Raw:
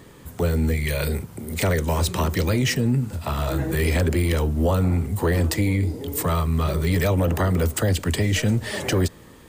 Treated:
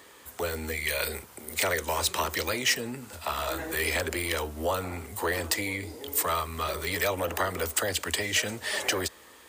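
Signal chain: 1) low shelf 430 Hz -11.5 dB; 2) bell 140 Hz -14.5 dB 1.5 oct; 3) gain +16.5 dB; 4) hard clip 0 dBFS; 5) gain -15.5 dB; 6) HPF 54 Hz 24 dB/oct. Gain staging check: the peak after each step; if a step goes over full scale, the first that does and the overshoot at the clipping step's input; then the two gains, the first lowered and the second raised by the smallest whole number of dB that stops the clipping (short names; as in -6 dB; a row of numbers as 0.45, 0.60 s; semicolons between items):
-12.5, -12.5, +4.0, 0.0, -15.5, -14.0 dBFS; step 3, 4.0 dB; step 3 +12.5 dB, step 5 -11.5 dB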